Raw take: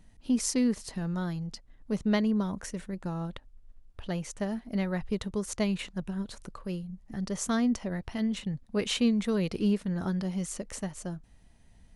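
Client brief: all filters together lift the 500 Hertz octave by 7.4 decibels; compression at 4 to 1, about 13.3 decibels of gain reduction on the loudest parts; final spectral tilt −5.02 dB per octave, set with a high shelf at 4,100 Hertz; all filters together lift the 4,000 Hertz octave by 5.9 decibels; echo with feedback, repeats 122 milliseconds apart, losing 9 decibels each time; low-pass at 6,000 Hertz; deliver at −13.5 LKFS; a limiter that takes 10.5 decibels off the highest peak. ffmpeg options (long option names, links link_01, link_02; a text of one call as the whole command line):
ffmpeg -i in.wav -af "lowpass=6000,equalizer=frequency=500:width_type=o:gain=9,equalizer=frequency=4000:width_type=o:gain=4.5,highshelf=frequency=4100:gain=7,acompressor=threshold=-35dB:ratio=4,alimiter=level_in=6.5dB:limit=-24dB:level=0:latency=1,volume=-6.5dB,aecho=1:1:122|244|366|488:0.355|0.124|0.0435|0.0152,volume=26dB" out.wav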